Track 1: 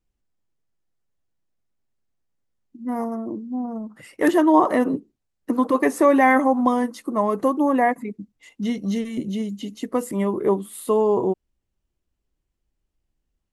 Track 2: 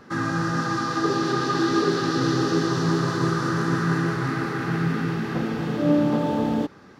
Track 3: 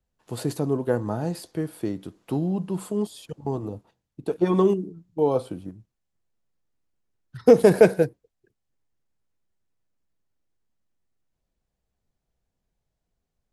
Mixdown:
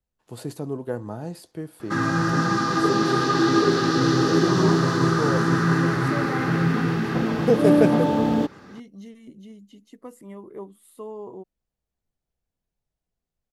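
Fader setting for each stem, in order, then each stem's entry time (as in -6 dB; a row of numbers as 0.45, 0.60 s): -17.5, +2.5, -5.5 dB; 0.10, 1.80, 0.00 s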